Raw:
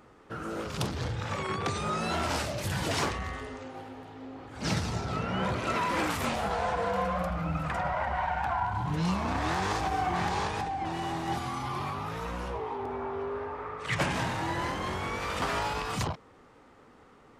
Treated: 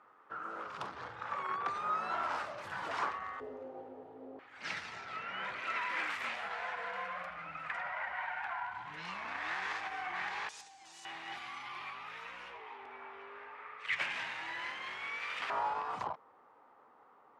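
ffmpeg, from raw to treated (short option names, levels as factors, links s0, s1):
-af "asetnsamples=n=441:p=0,asendcmd='3.4 bandpass f 500;4.39 bandpass f 2000;10.49 bandpass f 6900;11.05 bandpass f 2300;15.5 bandpass f 930',bandpass=f=1200:t=q:w=1.9:csg=0"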